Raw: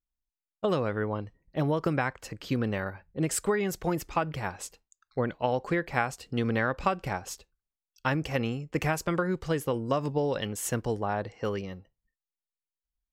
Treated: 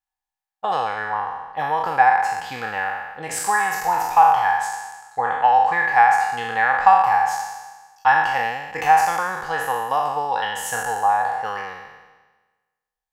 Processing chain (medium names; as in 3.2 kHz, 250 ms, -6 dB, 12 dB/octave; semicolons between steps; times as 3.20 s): spectral sustain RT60 1.28 s; resonant low shelf 610 Hz -11.5 dB, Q 3; small resonant body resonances 470/780/1700 Hz, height 16 dB, ringing for 50 ms